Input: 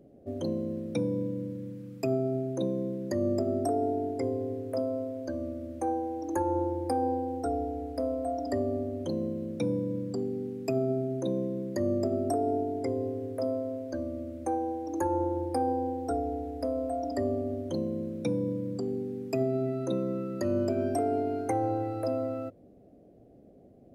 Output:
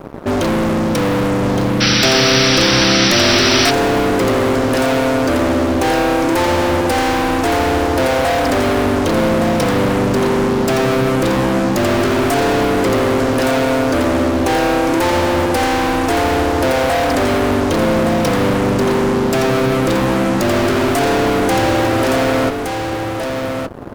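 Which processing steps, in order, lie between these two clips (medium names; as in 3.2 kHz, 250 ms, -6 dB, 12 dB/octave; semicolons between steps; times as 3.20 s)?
fuzz box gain 46 dB, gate -55 dBFS; delay 1167 ms -5.5 dB; painted sound noise, 1.80–3.71 s, 1.2–6 kHz -14 dBFS; trim -1.5 dB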